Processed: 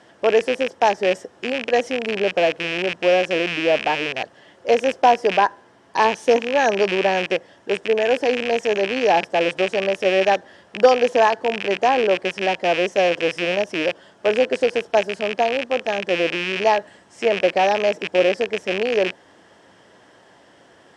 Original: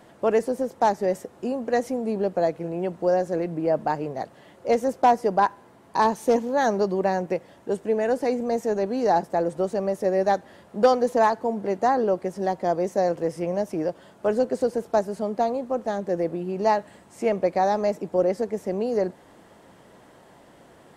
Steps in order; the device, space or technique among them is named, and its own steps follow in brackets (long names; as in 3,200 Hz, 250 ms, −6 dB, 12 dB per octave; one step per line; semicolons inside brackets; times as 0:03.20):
car door speaker with a rattle (loose part that buzzes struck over −38 dBFS, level −17 dBFS; loudspeaker in its box 88–9,200 Hz, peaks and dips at 150 Hz −6 dB, 220 Hz −4 dB, 1,700 Hz +7 dB, 3,100 Hz +7 dB, 5,400 Hz +8 dB)
dynamic equaliser 500 Hz, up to +5 dB, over −30 dBFS, Q 0.81